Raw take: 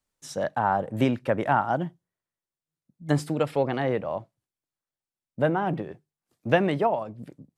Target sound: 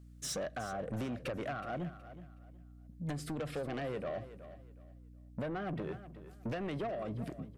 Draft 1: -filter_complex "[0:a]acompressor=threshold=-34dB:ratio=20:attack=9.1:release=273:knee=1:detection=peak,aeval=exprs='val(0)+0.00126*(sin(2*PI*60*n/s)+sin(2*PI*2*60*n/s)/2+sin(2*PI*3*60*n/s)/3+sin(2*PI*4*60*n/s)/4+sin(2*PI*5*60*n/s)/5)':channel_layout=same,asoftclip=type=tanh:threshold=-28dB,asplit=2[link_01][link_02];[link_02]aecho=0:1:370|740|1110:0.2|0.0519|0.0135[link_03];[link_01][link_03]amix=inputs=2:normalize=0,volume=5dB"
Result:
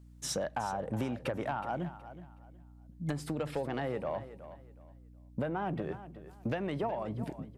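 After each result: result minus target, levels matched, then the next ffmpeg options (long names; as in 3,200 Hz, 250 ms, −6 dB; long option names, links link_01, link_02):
soft clipping: distortion −10 dB; 1,000 Hz band +2.5 dB
-filter_complex "[0:a]acompressor=threshold=-34dB:ratio=20:attack=9.1:release=273:knee=1:detection=peak,aeval=exprs='val(0)+0.00126*(sin(2*PI*60*n/s)+sin(2*PI*2*60*n/s)/2+sin(2*PI*3*60*n/s)/3+sin(2*PI*4*60*n/s)/4+sin(2*PI*5*60*n/s)/5)':channel_layout=same,asoftclip=type=tanh:threshold=-38dB,asplit=2[link_01][link_02];[link_02]aecho=0:1:370|740|1110:0.2|0.0519|0.0135[link_03];[link_01][link_03]amix=inputs=2:normalize=0,volume=5dB"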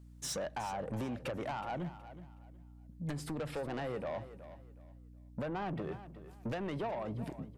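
1,000 Hz band +2.5 dB
-filter_complex "[0:a]acompressor=threshold=-34dB:ratio=20:attack=9.1:release=273:knee=1:detection=peak,asuperstop=centerf=910:order=12:qfactor=3,aeval=exprs='val(0)+0.00126*(sin(2*PI*60*n/s)+sin(2*PI*2*60*n/s)/2+sin(2*PI*3*60*n/s)/3+sin(2*PI*4*60*n/s)/4+sin(2*PI*5*60*n/s)/5)':channel_layout=same,asoftclip=type=tanh:threshold=-38dB,asplit=2[link_01][link_02];[link_02]aecho=0:1:370|740|1110:0.2|0.0519|0.0135[link_03];[link_01][link_03]amix=inputs=2:normalize=0,volume=5dB"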